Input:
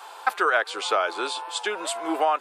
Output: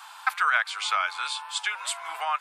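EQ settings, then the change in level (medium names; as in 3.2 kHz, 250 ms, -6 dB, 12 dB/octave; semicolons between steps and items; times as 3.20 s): high-pass 1 kHz 24 dB/octave; dynamic bell 2.2 kHz, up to +7 dB, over -50 dBFS, Q 7.9; 0.0 dB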